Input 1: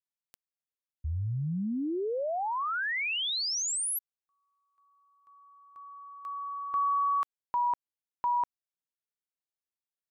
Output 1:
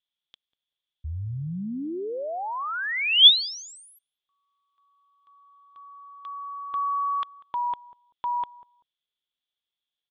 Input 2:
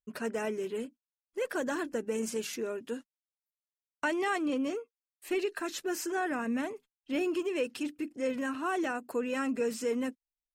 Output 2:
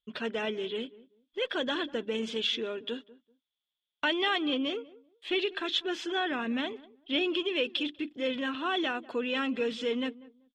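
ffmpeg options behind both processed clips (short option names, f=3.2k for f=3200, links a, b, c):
-filter_complex "[0:a]lowpass=f=3.4k:t=q:w=14,asplit=2[a][b];[b]adelay=193,lowpass=f=870:p=1,volume=-18dB,asplit=2[c][d];[d]adelay=193,lowpass=f=870:p=1,volume=0.23[e];[a][c][e]amix=inputs=3:normalize=0"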